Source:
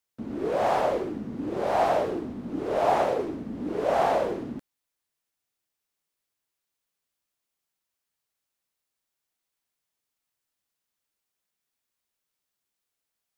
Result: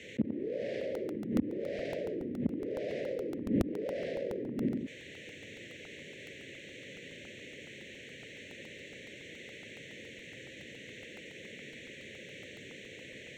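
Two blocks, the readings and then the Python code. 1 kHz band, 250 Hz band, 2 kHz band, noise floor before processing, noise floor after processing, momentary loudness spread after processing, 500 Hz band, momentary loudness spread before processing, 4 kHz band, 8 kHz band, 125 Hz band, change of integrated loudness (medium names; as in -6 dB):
-27.5 dB, -1.0 dB, -3.5 dB, -85 dBFS, -50 dBFS, 13 LU, -9.0 dB, 11 LU, -1.0 dB, no reading, -0.5 dB, -12.5 dB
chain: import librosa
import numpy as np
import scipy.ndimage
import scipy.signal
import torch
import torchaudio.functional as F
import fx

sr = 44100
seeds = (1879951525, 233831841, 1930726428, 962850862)

y = fx.wiener(x, sr, points=9)
y = scipy.signal.sosfilt(scipy.signal.ellip(3, 1.0, 40, [540.0, 1900.0], 'bandstop', fs=sr, output='sos'), y)
y = fx.low_shelf(y, sr, hz=120.0, db=-8.0)
y = fx.echo_feedback(y, sr, ms=90, feedback_pct=19, wet_db=-6.5)
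y = fx.gate_flip(y, sr, shuts_db=-28.0, range_db=-40)
y = scipy.signal.sosfilt(scipy.signal.butter(4, 78.0, 'highpass', fs=sr, output='sos'), y)
y = fx.air_absorb(y, sr, metres=120.0)
y = fx.buffer_crackle(y, sr, first_s=0.81, period_s=0.14, block=64, kind='repeat')
y = fx.env_flatten(y, sr, amount_pct=70)
y = F.gain(torch.from_numpy(y), 10.0).numpy()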